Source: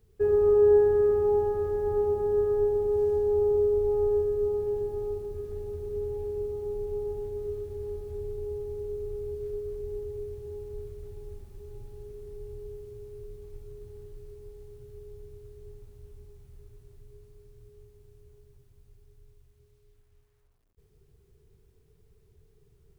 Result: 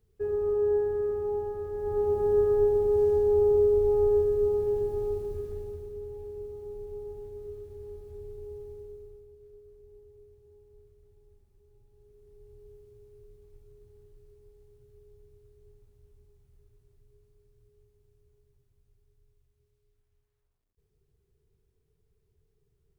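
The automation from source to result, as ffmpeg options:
-af "volume=9.5dB,afade=t=in:st=1.71:d=0.57:silence=0.375837,afade=t=out:st=5.31:d=0.64:silence=0.354813,afade=t=out:st=8.65:d=0.62:silence=0.281838,afade=t=in:st=11.86:d=0.86:silence=0.421697"

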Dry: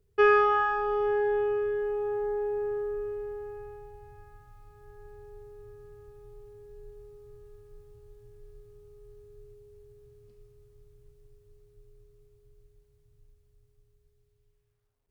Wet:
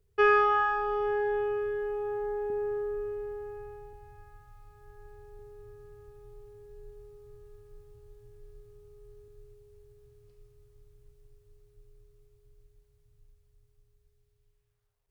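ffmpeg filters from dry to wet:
-af "asetnsamples=n=441:p=0,asendcmd='2.5 equalizer g -2.5;3.93 equalizer g -11.5;5.39 equalizer g -5;9.28 equalizer g -12.5',equalizer=f=250:t=o:w=0.96:g=-9"

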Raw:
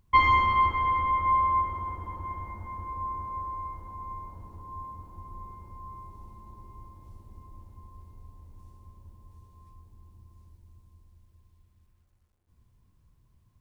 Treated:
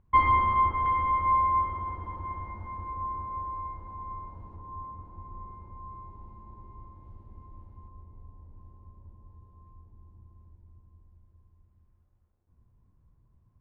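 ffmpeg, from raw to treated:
-af "asetnsamples=n=441:p=0,asendcmd='0.86 lowpass f 2400;1.63 lowpass f 3300;2.92 lowpass f 2500;4.56 lowpass f 1900;7.88 lowpass f 1200',lowpass=1.6k"

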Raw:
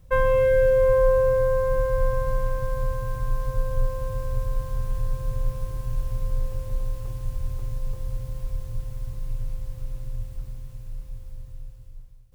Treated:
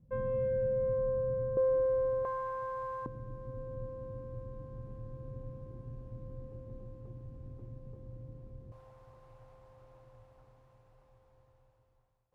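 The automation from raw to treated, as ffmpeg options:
-af "asetnsamples=n=441:p=0,asendcmd='1.57 bandpass f 400;2.25 bandpass f 920;3.06 bandpass f 270;8.72 bandpass f 820',bandpass=f=200:t=q:w=1.9:csg=0"

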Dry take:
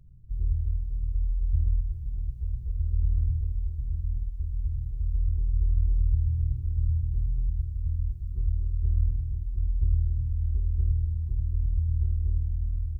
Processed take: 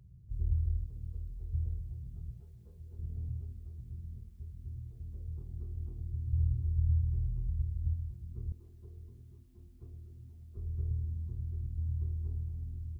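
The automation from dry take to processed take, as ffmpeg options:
-af "asetnsamples=n=441:p=0,asendcmd='0.86 highpass f 110;2.4 highpass f 240;2.99 highpass f 150;6.33 highpass f 71;7.94 highpass f 120;8.52 highpass f 300;10.57 highpass f 120',highpass=64"

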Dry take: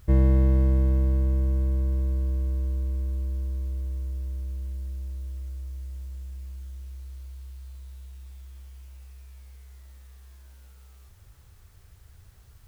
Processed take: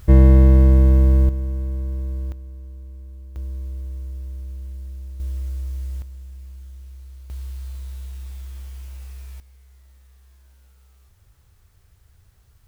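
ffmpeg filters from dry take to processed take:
-af "asetnsamples=n=441:p=0,asendcmd='1.29 volume volume -1dB;2.32 volume volume -10dB;3.36 volume volume 0dB;5.2 volume volume 8dB;6.02 volume volume 0dB;7.3 volume volume 9.5dB;9.4 volume volume -3dB',volume=8.5dB"

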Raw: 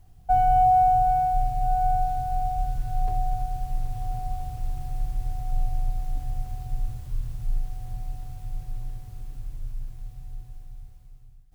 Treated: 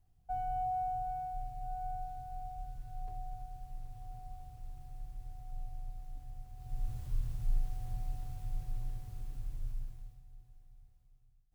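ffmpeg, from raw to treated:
-af "volume=-5dB,afade=t=in:st=6.54:d=0.49:silence=0.251189,afade=t=out:st=9.71:d=0.51:silence=0.251189"

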